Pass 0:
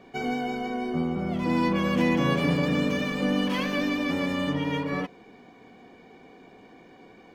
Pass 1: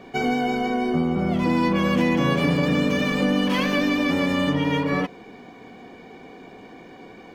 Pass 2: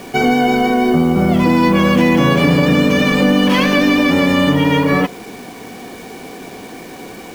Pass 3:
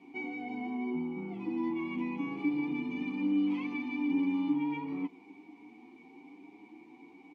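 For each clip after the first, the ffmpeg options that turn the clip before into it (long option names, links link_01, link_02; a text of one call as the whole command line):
ffmpeg -i in.wav -af "acompressor=threshold=-26dB:ratio=2.5,volume=7.5dB" out.wav
ffmpeg -i in.wav -filter_complex "[0:a]asplit=2[link_01][link_02];[link_02]alimiter=limit=-16.5dB:level=0:latency=1:release=86,volume=1dB[link_03];[link_01][link_03]amix=inputs=2:normalize=0,acrusher=bits=6:mix=0:aa=0.000001,volume=4dB" out.wav
ffmpeg -i in.wav -filter_complex "[0:a]asoftclip=type=tanh:threshold=-4dB,asplit=3[link_01][link_02][link_03];[link_01]bandpass=frequency=300:width_type=q:width=8,volume=0dB[link_04];[link_02]bandpass=frequency=870:width_type=q:width=8,volume=-6dB[link_05];[link_03]bandpass=frequency=2240:width_type=q:width=8,volume=-9dB[link_06];[link_04][link_05][link_06]amix=inputs=3:normalize=0,asplit=2[link_07][link_08];[link_08]adelay=8.5,afreqshift=0.98[link_09];[link_07][link_09]amix=inputs=2:normalize=1,volume=-8dB" out.wav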